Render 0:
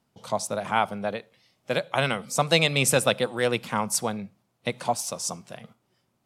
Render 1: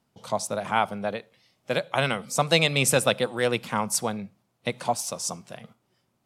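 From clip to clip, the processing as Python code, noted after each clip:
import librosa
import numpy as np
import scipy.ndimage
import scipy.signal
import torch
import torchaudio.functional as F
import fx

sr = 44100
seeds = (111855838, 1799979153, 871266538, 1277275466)

y = x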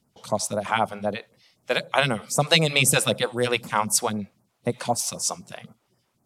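y = fx.phaser_stages(x, sr, stages=2, low_hz=110.0, high_hz=3300.0, hz=3.9, feedback_pct=25)
y = y * librosa.db_to_amplitude(4.0)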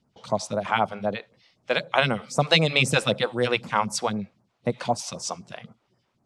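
y = scipy.signal.sosfilt(scipy.signal.butter(2, 4800.0, 'lowpass', fs=sr, output='sos'), x)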